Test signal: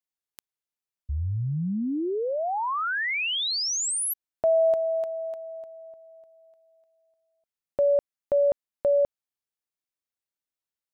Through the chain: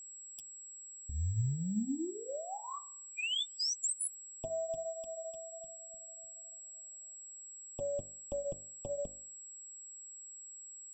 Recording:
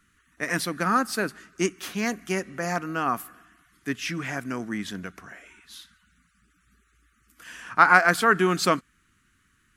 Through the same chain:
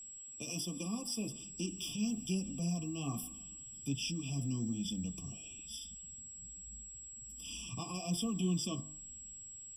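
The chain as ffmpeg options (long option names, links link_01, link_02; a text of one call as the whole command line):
ffmpeg -i in.wav -filter_complex "[0:a]bandreject=frequency=900:width=6.8,acrossover=split=200|790|2400[link_01][link_02][link_03][link_04];[link_01]dynaudnorm=framelen=910:gausssize=3:maxgain=13dB[link_05];[link_05][link_02][link_03][link_04]amix=inputs=4:normalize=0,equalizer=frequency=500:width_type=o:width=1:gain=-8,equalizer=frequency=1000:width_type=o:width=1:gain=-10,equalizer=frequency=2000:width_type=o:width=1:gain=-7,equalizer=frequency=4000:width_type=o:width=1:gain=11,equalizer=frequency=8000:width_type=o:width=1:gain=6,acompressor=threshold=-38dB:ratio=2.5:attack=14:release=32:knee=1:detection=rms,bandreject=frequency=49.54:width_type=h:width=4,bandreject=frequency=99.08:width_type=h:width=4,bandreject=frequency=148.62:width_type=h:width=4,bandreject=frequency=198.16:width_type=h:width=4,bandreject=frequency=247.7:width_type=h:width=4,bandreject=frequency=297.24:width_type=h:width=4,bandreject=frequency=346.78:width_type=h:width=4,bandreject=frequency=396.32:width_type=h:width=4,bandreject=frequency=445.86:width_type=h:width=4,bandreject=frequency=495.4:width_type=h:width=4,bandreject=frequency=544.94:width_type=h:width=4,bandreject=frequency=594.48:width_type=h:width=4,bandreject=frequency=644.02:width_type=h:width=4,bandreject=frequency=693.56:width_type=h:width=4,bandreject=frequency=743.1:width_type=h:width=4,bandreject=frequency=792.64:width_type=h:width=4,bandreject=frequency=842.18:width_type=h:width=4,bandreject=frequency=891.72:width_type=h:width=4,bandreject=frequency=941.26:width_type=h:width=4,bandreject=frequency=990.8:width_type=h:width=4,bandreject=frequency=1040.34:width_type=h:width=4,bandreject=frequency=1089.88:width_type=h:width=4,bandreject=frequency=1139.42:width_type=h:width=4,bandreject=frequency=1188.96:width_type=h:width=4,bandreject=frequency=1238.5:width_type=h:width=4,bandreject=frequency=1288.04:width_type=h:width=4,bandreject=frequency=1337.58:width_type=h:width=4,bandreject=frequency=1387.12:width_type=h:width=4,bandreject=frequency=1436.66:width_type=h:width=4,bandreject=frequency=1486.2:width_type=h:width=4,bandreject=frequency=1535.74:width_type=h:width=4,bandreject=frequency=1585.28:width_type=h:width=4,bandreject=frequency=1634.82:width_type=h:width=4,bandreject=frequency=1684.36:width_type=h:width=4,bandreject=frequency=1733.9:width_type=h:width=4,bandreject=frequency=1783.44:width_type=h:width=4,bandreject=frequency=1832.98:width_type=h:width=4,bandreject=frequency=1882.52:width_type=h:width=4,bandreject=frequency=1932.06:width_type=h:width=4,flanger=delay=3.6:depth=5.5:regen=-18:speed=1.2:shape=sinusoidal,aeval=exprs='val(0)+0.00355*sin(2*PI*7700*n/s)':channel_layout=same,afftfilt=real='re*eq(mod(floor(b*sr/1024/1200),2),0)':imag='im*eq(mod(floor(b*sr/1024/1200),2),0)':win_size=1024:overlap=0.75,volume=1.5dB" out.wav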